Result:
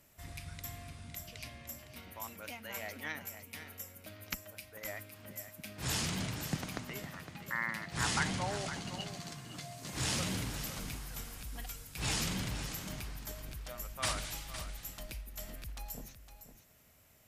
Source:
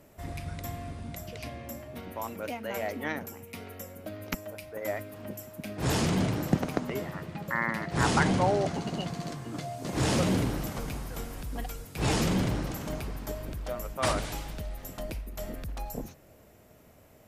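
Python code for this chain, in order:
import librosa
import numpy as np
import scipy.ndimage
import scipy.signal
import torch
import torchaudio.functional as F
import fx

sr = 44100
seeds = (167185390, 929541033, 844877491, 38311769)

p1 = fx.tone_stack(x, sr, knobs='5-5-5')
p2 = p1 + fx.echo_single(p1, sr, ms=510, db=-11.0, dry=0)
y = p2 * librosa.db_to_amplitude(5.5)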